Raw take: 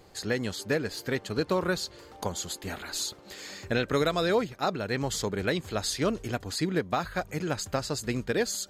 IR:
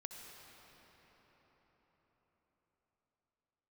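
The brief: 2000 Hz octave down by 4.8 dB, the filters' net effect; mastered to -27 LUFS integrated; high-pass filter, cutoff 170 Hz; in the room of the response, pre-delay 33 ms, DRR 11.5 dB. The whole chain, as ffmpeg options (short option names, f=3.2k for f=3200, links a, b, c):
-filter_complex "[0:a]highpass=170,equalizer=f=2k:t=o:g=-6.5,asplit=2[a][b];[1:a]atrim=start_sample=2205,adelay=33[c];[b][c]afir=irnorm=-1:irlink=0,volume=-8dB[d];[a][d]amix=inputs=2:normalize=0,volume=4dB"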